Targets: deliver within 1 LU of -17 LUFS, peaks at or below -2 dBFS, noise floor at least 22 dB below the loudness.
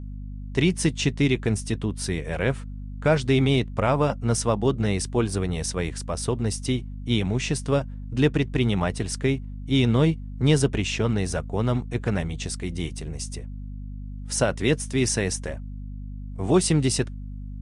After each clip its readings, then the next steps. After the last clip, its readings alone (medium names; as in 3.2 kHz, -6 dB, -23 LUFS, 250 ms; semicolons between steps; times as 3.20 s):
hum 50 Hz; highest harmonic 250 Hz; hum level -33 dBFS; loudness -25.0 LUFS; peak level -8.0 dBFS; loudness target -17.0 LUFS
-> hum notches 50/100/150/200/250 Hz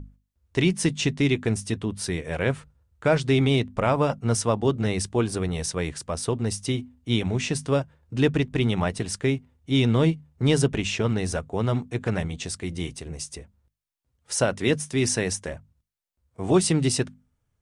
hum not found; loudness -25.0 LUFS; peak level -8.5 dBFS; loudness target -17.0 LUFS
-> trim +8 dB; peak limiter -2 dBFS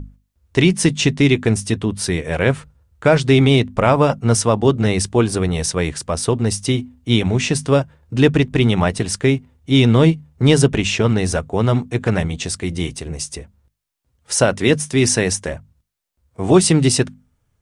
loudness -17.5 LUFS; peak level -2.0 dBFS; noise floor -69 dBFS